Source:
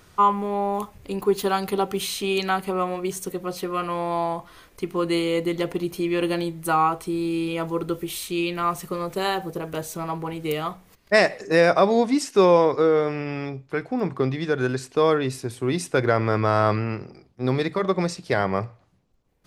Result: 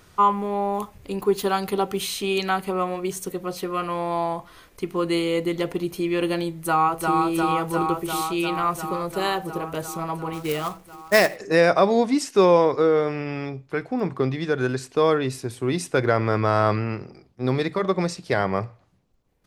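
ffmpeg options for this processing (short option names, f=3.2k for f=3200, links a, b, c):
-filter_complex "[0:a]asplit=2[a][b];[b]afade=t=in:st=6.53:d=0.01,afade=t=out:st=7.16:d=0.01,aecho=0:1:350|700|1050|1400|1750|2100|2450|2800|3150|3500|3850|4200:0.749894|0.599915|0.479932|0.383946|0.307157|0.245725|0.19658|0.157264|0.125811|0.100649|0.0805193|0.0644154[c];[a][c]amix=inputs=2:normalize=0,asplit=3[d][e][f];[d]afade=t=out:st=10.32:d=0.02[g];[e]acrusher=bits=3:mode=log:mix=0:aa=0.000001,afade=t=in:st=10.32:d=0.02,afade=t=out:st=11.35:d=0.02[h];[f]afade=t=in:st=11.35:d=0.02[i];[g][h][i]amix=inputs=3:normalize=0"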